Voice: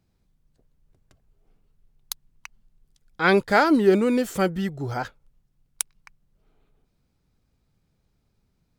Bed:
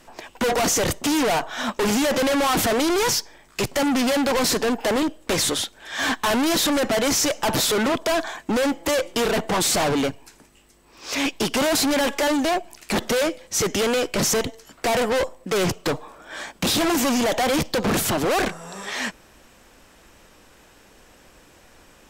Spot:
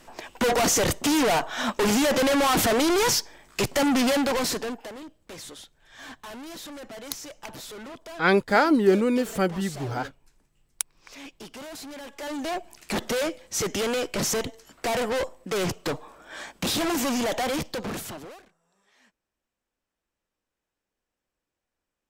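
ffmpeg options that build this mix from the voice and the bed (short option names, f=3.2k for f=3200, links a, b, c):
-filter_complex "[0:a]adelay=5000,volume=-1.5dB[a];[1:a]volume=13.5dB,afade=t=out:st=4.06:d=0.86:silence=0.11885,afade=t=in:st=12.11:d=0.63:silence=0.188365,afade=t=out:st=17.36:d=1.06:silence=0.0334965[b];[a][b]amix=inputs=2:normalize=0"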